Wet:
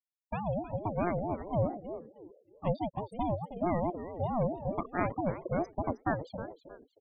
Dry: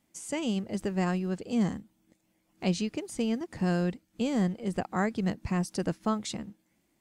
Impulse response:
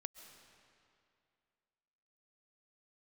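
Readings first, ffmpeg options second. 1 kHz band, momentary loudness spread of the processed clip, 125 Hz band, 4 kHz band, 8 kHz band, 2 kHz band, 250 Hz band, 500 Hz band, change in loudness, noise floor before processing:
+3.0 dB, 11 LU, -2.5 dB, under -15 dB, under -25 dB, -4.5 dB, -7.0 dB, +1.0 dB, -3.0 dB, -74 dBFS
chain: -filter_complex "[0:a]afftfilt=real='re*gte(hypot(re,im),0.0501)':imag='im*gte(hypot(re,im),0.0501)':win_size=1024:overlap=0.75,highpass=52,acrossover=split=140|1200|2300[s0][s1][s2][s3];[s3]alimiter=level_in=17.8:limit=0.0631:level=0:latency=1:release=75,volume=0.0562[s4];[s0][s1][s2][s4]amix=inputs=4:normalize=0,asplit=4[s5][s6][s7][s8];[s6]adelay=314,afreqshift=-86,volume=0.266[s9];[s7]adelay=628,afreqshift=-172,volume=0.0822[s10];[s8]adelay=942,afreqshift=-258,volume=0.0257[s11];[s5][s9][s10][s11]amix=inputs=4:normalize=0,aeval=exprs='val(0)*sin(2*PI*430*n/s+430*0.25/4.6*sin(2*PI*4.6*n/s))':c=same"

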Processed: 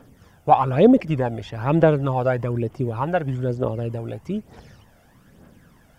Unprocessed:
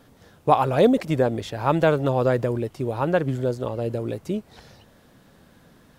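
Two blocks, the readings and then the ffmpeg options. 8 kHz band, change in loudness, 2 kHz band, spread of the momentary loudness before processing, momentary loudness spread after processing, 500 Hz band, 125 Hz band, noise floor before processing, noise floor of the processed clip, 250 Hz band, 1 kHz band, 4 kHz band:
no reading, +1.5 dB, -1.0 dB, 11 LU, 14 LU, +0.5 dB, +3.0 dB, -55 dBFS, -55 dBFS, +3.0 dB, +2.0 dB, -4.0 dB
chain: -filter_complex "[0:a]equalizer=f=4000:w=4.8:g=-11,aphaser=in_gain=1:out_gain=1:delay=1.5:decay=0.54:speed=1.1:type=triangular,acrossover=split=5100[s0][s1];[s1]acompressor=threshold=0.001:ratio=4:attack=1:release=60[s2];[s0][s2]amix=inputs=2:normalize=0,volume=0.891"

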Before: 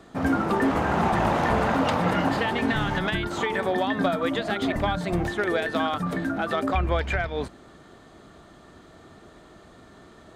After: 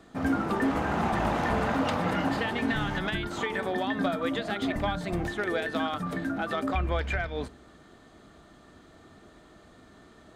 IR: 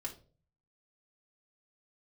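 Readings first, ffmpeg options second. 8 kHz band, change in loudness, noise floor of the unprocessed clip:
-3.5 dB, -4.0 dB, -51 dBFS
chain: -filter_complex "[0:a]asplit=2[s0][s1];[s1]asuperstop=centerf=700:order=20:qfactor=4.1[s2];[1:a]atrim=start_sample=2205[s3];[s2][s3]afir=irnorm=-1:irlink=0,volume=0.282[s4];[s0][s4]amix=inputs=2:normalize=0,volume=0.562"

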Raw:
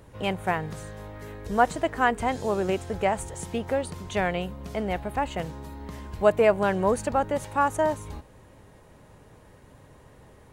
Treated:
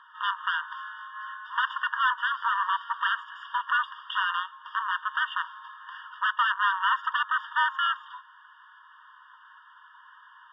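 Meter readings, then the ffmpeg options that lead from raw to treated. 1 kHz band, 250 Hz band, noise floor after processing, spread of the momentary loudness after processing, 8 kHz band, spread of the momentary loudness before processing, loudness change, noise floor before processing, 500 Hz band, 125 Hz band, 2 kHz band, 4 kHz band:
+0.5 dB, under -40 dB, -54 dBFS, 14 LU, under -35 dB, 16 LU, -1.5 dB, -53 dBFS, under -40 dB, under -40 dB, +6.5 dB, +7.0 dB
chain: -af "volume=16.8,asoftclip=hard,volume=0.0596,equalizer=f=250:t=o:w=1:g=11,equalizer=f=500:t=o:w=1:g=7,equalizer=f=1000:t=o:w=1:g=6,aeval=exprs='0.282*sin(PI/2*2.51*val(0)/0.282)':c=same,highpass=f=310:t=q:w=0.5412,highpass=f=310:t=q:w=1.307,lowpass=f=3500:t=q:w=0.5176,lowpass=f=3500:t=q:w=0.7071,lowpass=f=3500:t=q:w=1.932,afreqshift=-180,afftfilt=real='re*eq(mod(floor(b*sr/1024/930),2),1)':imag='im*eq(mod(floor(b*sr/1024/930),2),1)':win_size=1024:overlap=0.75,volume=0.75"

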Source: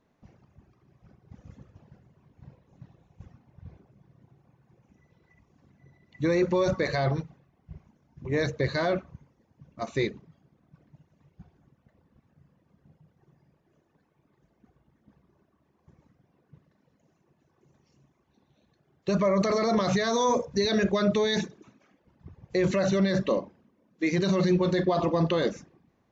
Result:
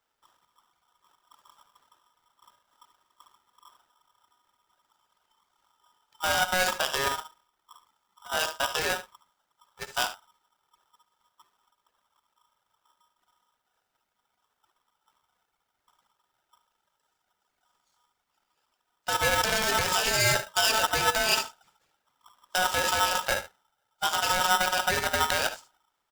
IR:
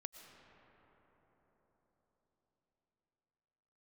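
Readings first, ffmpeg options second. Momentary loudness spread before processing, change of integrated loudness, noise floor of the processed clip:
8 LU, +0.5 dB, -80 dBFS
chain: -filter_complex "[0:a]crystalizer=i=3.5:c=0,aeval=exprs='0.355*(cos(1*acos(clip(val(0)/0.355,-1,1)))-cos(1*PI/2))+0.0355*(cos(7*acos(clip(val(0)/0.355,-1,1)))-cos(7*PI/2))':c=same,asplit=2[s0][s1];[s1]aecho=0:1:60|73:0.133|0.211[s2];[s0][s2]amix=inputs=2:normalize=0,aeval=exprs='val(0)*sgn(sin(2*PI*1100*n/s))':c=same"

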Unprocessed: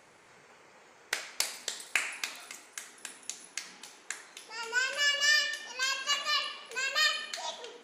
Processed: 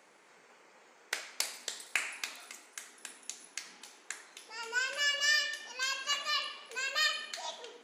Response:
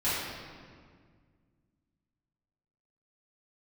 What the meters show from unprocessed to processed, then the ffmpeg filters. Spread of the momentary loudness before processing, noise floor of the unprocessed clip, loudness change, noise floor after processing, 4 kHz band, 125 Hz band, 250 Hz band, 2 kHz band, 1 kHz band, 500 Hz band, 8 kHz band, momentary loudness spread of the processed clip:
17 LU, -58 dBFS, -3.0 dB, -62 dBFS, -3.0 dB, no reading, -3.5 dB, -3.0 dB, -3.0 dB, -3.0 dB, -3.0 dB, 17 LU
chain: -af "highpass=f=190:w=0.5412,highpass=f=190:w=1.3066,volume=0.708"

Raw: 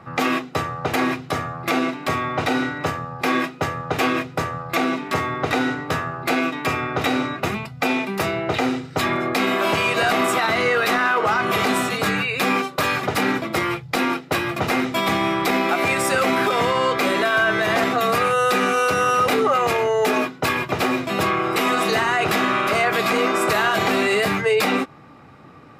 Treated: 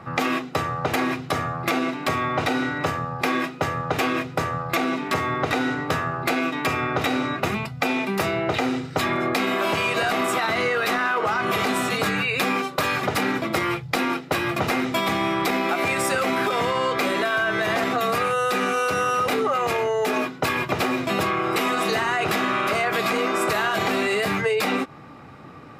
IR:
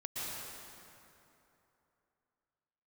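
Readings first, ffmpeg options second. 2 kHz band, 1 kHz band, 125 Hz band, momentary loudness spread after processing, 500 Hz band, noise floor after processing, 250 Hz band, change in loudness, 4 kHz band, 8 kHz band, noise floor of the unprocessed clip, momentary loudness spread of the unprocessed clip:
-2.5 dB, -2.5 dB, -1.5 dB, 3 LU, -3.0 dB, -38 dBFS, -2.5 dB, -2.5 dB, -2.5 dB, -2.5 dB, -41 dBFS, 6 LU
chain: -af "acompressor=threshold=0.0794:ratio=6,volume=1.33"

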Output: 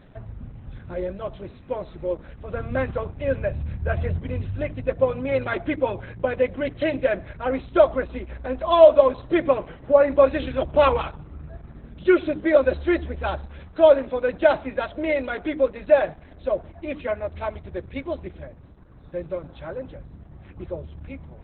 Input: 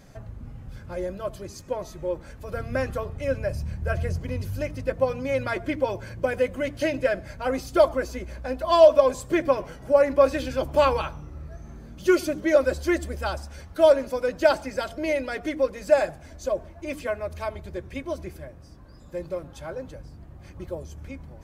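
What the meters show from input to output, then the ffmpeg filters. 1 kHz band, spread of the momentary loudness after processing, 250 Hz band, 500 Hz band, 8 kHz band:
+1.5 dB, 17 LU, +2.5 dB, +2.5 dB, under -35 dB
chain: -af "volume=1.33" -ar 48000 -c:a libopus -b:a 8k

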